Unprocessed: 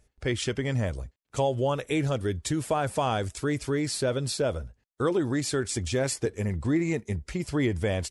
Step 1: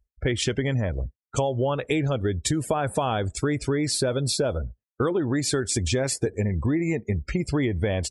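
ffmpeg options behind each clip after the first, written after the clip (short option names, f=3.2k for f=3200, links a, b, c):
-af "afftdn=nr=34:nf=-43,acompressor=threshold=-30dB:ratio=6,volume=9dB"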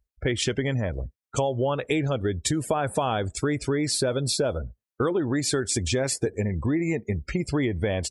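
-af "lowshelf=f=110:g=-4.5"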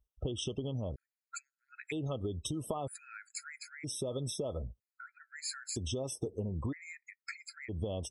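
-af "acompressor=threshold=-30dB:ratio=6,afftfilt=real='re*gt(sin(2*PI*0.52*pts/sr)*(1-2*mod(floor(b*sr/1024/1300),2)),0)':imag='im*gt(sin(2*PI*0.52*pts/sr)*(1-2*mod(floor(b*sr/1024/1300),2)),0)':win_size=1024:overlap=0.75,volume=-3dB"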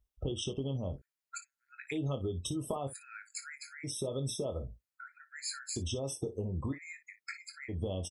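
-af "aecho=1:1:22|57:0.376|0.178"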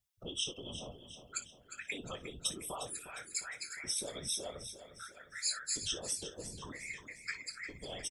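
-af "tiltshelf=f=730:g=-10,afftfilt=real='hypot(re,im)*cos(2*PI*random(0))':imag='hypot(re,im)*sin(2*PI*random(1))':win_size=512:overlap=0.75,aecho=1:1:356|712|1068|1424|1780:0.282|0.144|0.0733|0.0374|0.0191,volume=1dB"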